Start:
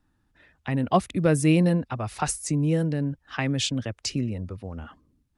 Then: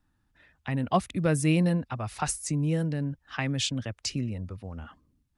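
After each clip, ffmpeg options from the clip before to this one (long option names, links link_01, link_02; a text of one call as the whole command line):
ffmpeg -i in.wav -af "equalizer=frequency=390:width_type=o:width=1.4:gain=-4,volume=-2dB" out.wav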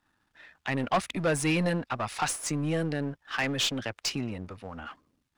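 ffmpeg -i in.wav -filter_complex "[0:a]aeval=exprs='if(lt(val(0),0),0.447*val(0),val(0))':channel_layout=same,asplit=2[link_01][link_02];[link_02]highpass=frequency=720:poles=1,volume=21dB,asoftclip=type=tanh:threshold=-11.5dB[link_03];[link_01][link_03]amix=inputs=2:normalize=0,lowpass=frequency=4500:poles=1,volume=-6dB,volume=-4dB" out.wav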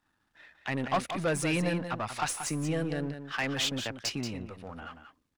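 ffmpeg -i in.wav -af "aecho=1:1:182:0.355,volume=-2.5dB" out.wav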